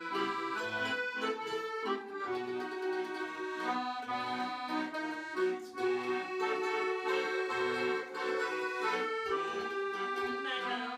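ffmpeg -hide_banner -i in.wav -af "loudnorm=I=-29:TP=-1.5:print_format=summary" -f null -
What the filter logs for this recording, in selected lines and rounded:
Input Integrated:    -35.1 LUFS
Input True Peak:     -20.4 dBTP
Input LRA:             2.8 LU
Input Threshold:     -45.1 LUFS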